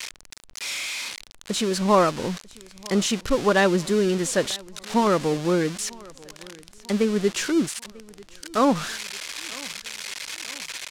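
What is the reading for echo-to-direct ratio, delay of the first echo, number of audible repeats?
-22.5 dB, 944 ms, 2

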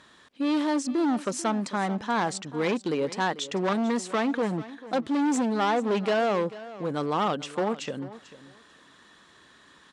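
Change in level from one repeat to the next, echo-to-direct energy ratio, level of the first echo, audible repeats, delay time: -15.5 dB, -16.5 dB, -16.5 dB, 2, 442 ms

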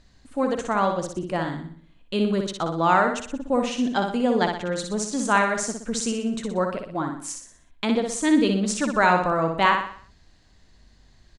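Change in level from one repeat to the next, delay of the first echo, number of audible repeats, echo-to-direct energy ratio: -7.0 dB, 61 ms, 5, -4.0 dB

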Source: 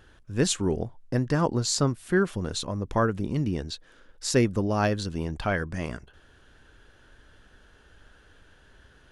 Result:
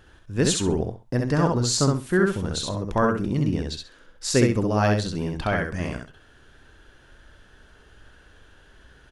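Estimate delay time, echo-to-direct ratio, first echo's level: 66 ms, -3.0 dB, -3.0 dB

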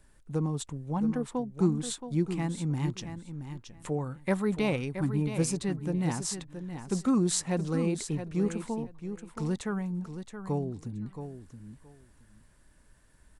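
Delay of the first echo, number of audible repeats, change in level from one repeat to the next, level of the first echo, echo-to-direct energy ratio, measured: 673 ms, 2, -15.5 dB, -9.5 dB, -9.5 dB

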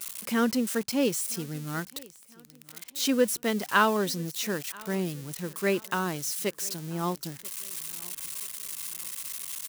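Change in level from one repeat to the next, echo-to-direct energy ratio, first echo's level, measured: -8.0 dB, -23.0 dB, -23.5 dB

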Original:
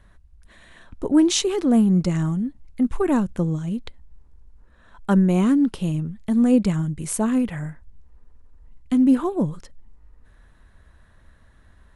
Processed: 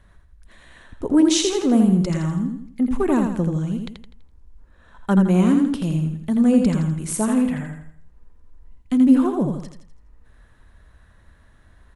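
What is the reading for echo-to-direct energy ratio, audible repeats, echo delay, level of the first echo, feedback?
-4.5 dB, 4, 83 ms, -5.0 dB, 40%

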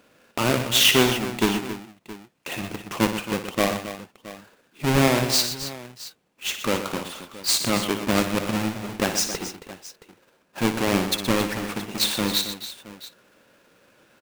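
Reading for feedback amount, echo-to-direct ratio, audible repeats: no regular repeats, -6.0 dB, 4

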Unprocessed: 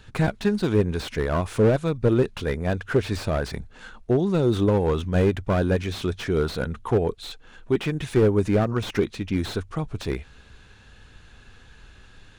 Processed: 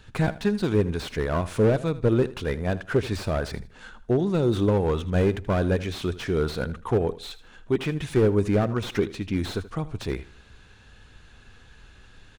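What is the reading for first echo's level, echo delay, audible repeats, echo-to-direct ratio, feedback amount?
-16.5 dB, 79 ms, 2, -16.0 dB, 27%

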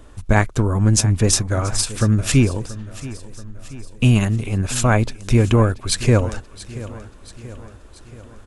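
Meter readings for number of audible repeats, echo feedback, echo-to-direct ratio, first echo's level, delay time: 4, 55%, -15.5 dB, -17.0 dB, 681 ms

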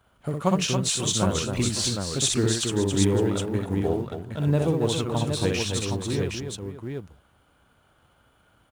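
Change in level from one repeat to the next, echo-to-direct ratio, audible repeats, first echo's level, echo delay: no regular repeats, 0.0 dB, 5, -3.5 dB, 62 ms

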